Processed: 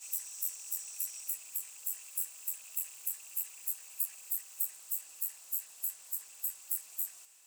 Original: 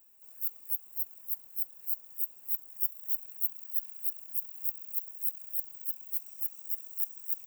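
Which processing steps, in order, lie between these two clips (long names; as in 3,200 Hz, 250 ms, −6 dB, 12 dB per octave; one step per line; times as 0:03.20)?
played backwards from end to start
meter weighting curve ITU-R 468
level +6 dB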